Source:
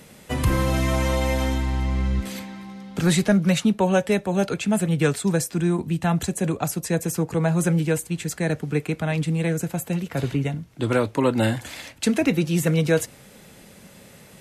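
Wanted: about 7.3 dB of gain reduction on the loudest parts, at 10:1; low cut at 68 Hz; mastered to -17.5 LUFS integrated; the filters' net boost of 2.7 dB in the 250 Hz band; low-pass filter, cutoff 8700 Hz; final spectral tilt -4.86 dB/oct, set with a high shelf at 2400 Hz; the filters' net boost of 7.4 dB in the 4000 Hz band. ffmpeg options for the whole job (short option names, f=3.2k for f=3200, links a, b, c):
-af "highpass=68,lowpass=8.7k,equalizer=f=250:t=o:g=4,highshelf=f=2.4k:g=6,equalizer=f=4k:t=o:g=4,acompressor=threshold=-19dB:ratio=10,volume=7.5dB"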